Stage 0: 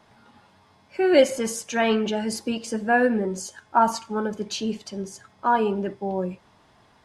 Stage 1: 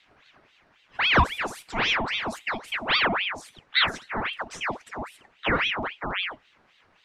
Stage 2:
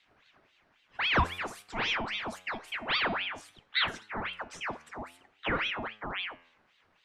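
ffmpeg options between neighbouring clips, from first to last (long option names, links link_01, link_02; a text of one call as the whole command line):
ffmpeg -i in.wav -af "highshelf=frequency=3600:gain=-12,aeval=exprs='val(0)*sin(2*PI*1700*n/s+1700*0.75/3.7*sin(2*PI*3.7*n/s))':channel_layout=same" out.wav
ffmpeg -i in.wav -af "flanger=delay=8.3:depth=4.9:regen=90:speed=0.52:shape=triangular,volume=-2dB" out.wav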